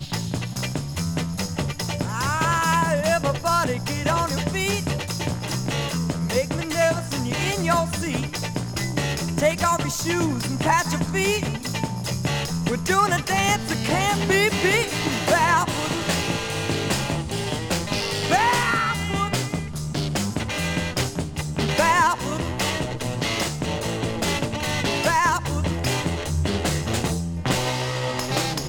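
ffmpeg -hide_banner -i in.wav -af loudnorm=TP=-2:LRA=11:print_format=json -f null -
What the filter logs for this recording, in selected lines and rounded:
"input_i" : "-23.3",
"input_tp" : "-6.9",
"input_lra" : "3.2",
"input_thresh" : "-33.3",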